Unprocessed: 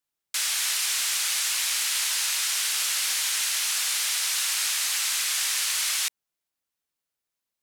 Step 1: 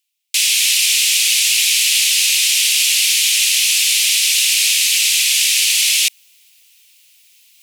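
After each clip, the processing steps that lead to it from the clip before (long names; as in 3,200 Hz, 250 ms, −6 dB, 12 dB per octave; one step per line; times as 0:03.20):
tilt shelving filter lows −6.5 dB, about 920 Hz
reversed playback
upward compression, threshold −35 dBFS
reversed playback
high shelf with overshoot 1,900 Hz +10 dB, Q 3
level −6 dB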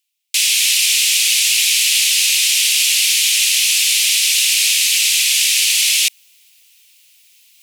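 no processing that can be heard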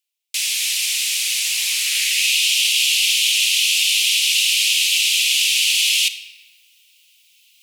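high-pass filter sweep 440 Hz → 2,800 Hz, 0:01.28–0:02.34
rectangular room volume 1,300 cubic metres, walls mixed, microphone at 0.6 metres
level −7 dB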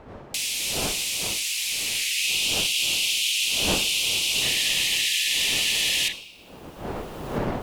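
wind on the microphone 630 Hz −32 dBFS
camcorder AGC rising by 11 dB per second
sound drawn into the spectrogram noise, 0:04.41–0:06.13, 1,700–4,100 Hz −25 dBFS
level −7 dB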